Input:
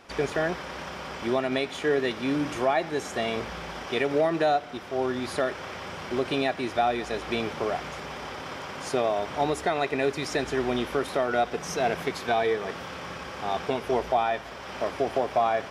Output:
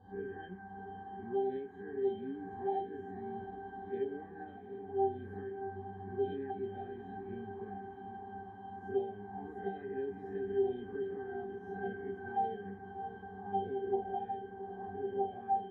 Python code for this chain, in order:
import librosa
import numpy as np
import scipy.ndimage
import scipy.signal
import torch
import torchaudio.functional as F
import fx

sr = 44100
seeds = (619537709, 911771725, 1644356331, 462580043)

y = fx.spec_swells(x, sr, rise_s=0.63)
y = fx.peak_eq(y, sr, hz=4800.0, db=-11.5, octaves=1.4)
y = fx.hum_notches(y, sr, base_hz=50, count=2)
y = fx.octave_resonator(y, sr, note='G', decay_s=0.36)
y = fx.small_body(y, sr, hz=(300.0, 730.0, 3900.0), ring_ms=75, db=16)
y = fx.env_phaser(y, sr, low_hz=370.0, high_hz=1400.0, full_db=-28.0)
y = fx.doubler(y, sr, ms=22.0, db=-11.5)
y = fx.echo_diffused(y, sr, ms=696, feedback_pct=58, wet_db=-10.5)
y = y * 10.0 ** (2.0 / 20.0)